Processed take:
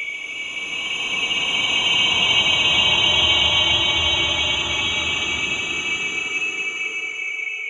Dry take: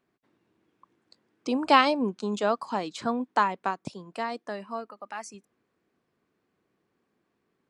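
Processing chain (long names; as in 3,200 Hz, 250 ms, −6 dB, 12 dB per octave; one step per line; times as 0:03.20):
neighbouring bands swapped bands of 2,000 Hz
pitch vibrato 1.2 Hz 17 cents
extreme stretch with random phases 21×, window 0.25 s, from 0:01.62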